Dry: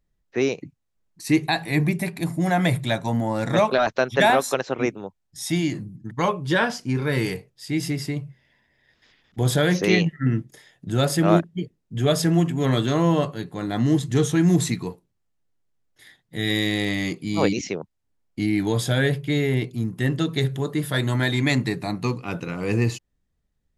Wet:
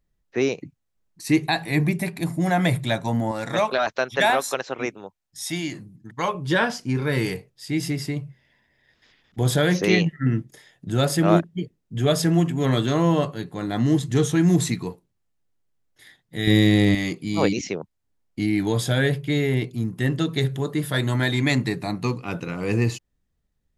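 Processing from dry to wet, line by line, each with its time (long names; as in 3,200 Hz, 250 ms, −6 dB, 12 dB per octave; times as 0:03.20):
0:03.31–0:06.35: low-shelf EQ 440 Hz −8.5 dB
0:16.47–0:16.95: low-shelf EQ 420 Hz +11.5 dB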